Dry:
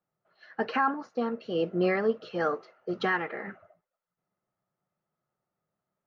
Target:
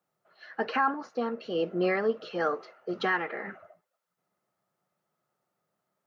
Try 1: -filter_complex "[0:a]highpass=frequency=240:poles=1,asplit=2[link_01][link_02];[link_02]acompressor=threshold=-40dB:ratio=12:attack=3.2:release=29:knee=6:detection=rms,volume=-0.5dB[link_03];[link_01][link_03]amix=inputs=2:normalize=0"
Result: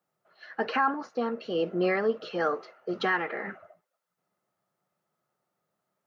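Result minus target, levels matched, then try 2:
downward compressor: peak gain reduction −9 dB
-filter_complex "[0:a]highpass=frequency=240:poles=1,asplit=2[link_01][link_02];[link_02]acompressor=threshold=-50dB:ratio=12:attack=3.2:release=29:knee=6:detection=rms,volume=-0.5dB[link_03];[link_01][link_03]amix=inputs=2:normalize=0"

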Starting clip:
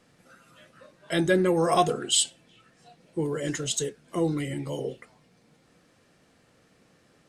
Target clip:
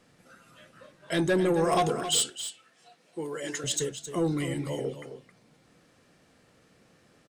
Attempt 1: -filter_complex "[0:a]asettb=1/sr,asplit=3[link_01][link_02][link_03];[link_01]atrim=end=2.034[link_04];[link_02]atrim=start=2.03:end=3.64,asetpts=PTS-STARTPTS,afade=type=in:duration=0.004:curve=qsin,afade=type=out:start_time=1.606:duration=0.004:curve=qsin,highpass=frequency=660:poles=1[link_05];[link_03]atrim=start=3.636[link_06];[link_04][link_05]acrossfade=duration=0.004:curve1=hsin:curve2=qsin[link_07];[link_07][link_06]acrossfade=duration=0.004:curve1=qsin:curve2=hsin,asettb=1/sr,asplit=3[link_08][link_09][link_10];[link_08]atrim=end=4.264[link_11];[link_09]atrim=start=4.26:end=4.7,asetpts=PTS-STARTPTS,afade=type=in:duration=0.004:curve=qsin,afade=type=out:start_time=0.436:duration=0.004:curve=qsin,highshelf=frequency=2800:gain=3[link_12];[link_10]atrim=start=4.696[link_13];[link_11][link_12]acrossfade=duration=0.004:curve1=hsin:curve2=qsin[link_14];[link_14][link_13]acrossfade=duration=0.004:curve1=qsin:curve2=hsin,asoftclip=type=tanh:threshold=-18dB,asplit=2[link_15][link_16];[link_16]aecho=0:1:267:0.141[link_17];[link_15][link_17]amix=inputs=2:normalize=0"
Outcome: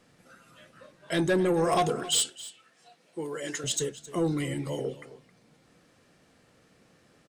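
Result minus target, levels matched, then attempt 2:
echo-to-direct −6 dB
-filter_complex "[0:a]asettb=1/sr,asplit=3[link_01][link_02][link_03];[link_01]atrim=end=2.034[link_04];[link_02]atrim=start=2.03:end=3.64,asetpts=PTS-STARTPTS,afade=type=in:duration=0.004:curve=qsin,afade=type=out:start_time=1.606:duration=0.004:curve=qsin,highpass=frequency=660:poles=1[link_05];[link_03]atrim=start=3.636[link_06];[link_04][link_05]acrossfade=duration=0.004:curve1=hsin:curve2=qsin[link_07];[link_07][link_06]acrossfade=duration=0.004:curve1=qsin:curve2=hsin,asettb=1/sr,asplit=3[link_08][link_09][link_10];[link_08]atrim=end=4.264[link_11];[link_09]atrim=start=4.26:end=4.7,asetpts=PTS-STARTPTS,afade=type=in:duration=0.004:curve=qsin,afade=type=out:start_time=0.436:duration=0.004:curve=qsin,highshelf=frequency=2800:gain=3[link_12];[link_10]atrim=start=4.696[link_13];[link_11][link_12]acrossfade=duration=0.004:curve1=hsin:curve2=qsin[link_14];[link_14][link_13]acrossfade=duration=0.004:curve1=qsin:curve2=hsin,asoftclip=type=tanh:threshold=-18dB,asplit=2[link_15][link_16];[link_16]aecho=0:1:267:0.282[link_17];[link_15][link_17]amix=inputs=2:normalize=0"

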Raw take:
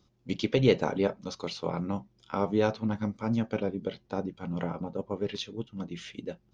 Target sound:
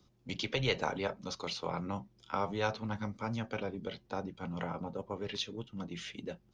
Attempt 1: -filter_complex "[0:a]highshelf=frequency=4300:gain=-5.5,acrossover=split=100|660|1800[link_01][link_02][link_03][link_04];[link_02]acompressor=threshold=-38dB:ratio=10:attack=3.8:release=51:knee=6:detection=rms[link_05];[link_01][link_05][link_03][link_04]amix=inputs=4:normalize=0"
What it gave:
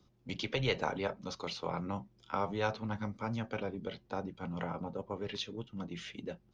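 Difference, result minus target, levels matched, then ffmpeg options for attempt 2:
8,000 Hz band −3.5 dB
-filter_complex "[0:a]acrossover=split=100|660|1800[link_01][link_02][link_03][link_04];[link_02]acompressor=threshold=-38dB:ratio=10:attack=3.8:release=51:knee=6:detection=rms[link_05];[link_01][link_05][link_03][link_04]amix=inputs=4:normalize=0"

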